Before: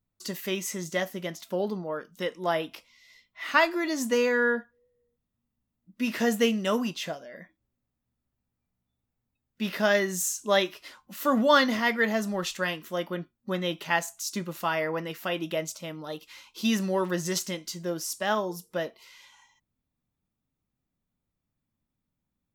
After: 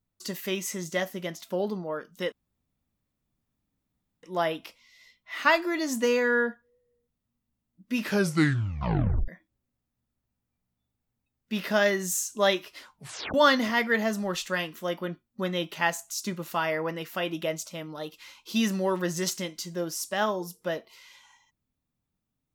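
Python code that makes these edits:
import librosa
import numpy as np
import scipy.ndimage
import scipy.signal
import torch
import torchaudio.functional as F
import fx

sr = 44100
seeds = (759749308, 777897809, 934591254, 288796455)

y = fx.edit(x, sr, fx.insert_room_tone(at_s=2.32, length_s=1.91),
    fx.tape_stop(start_s=6.09, length_s=1.28),
    fx.tape_stop(start_s=11.02, length_s=0.41), tone=tone)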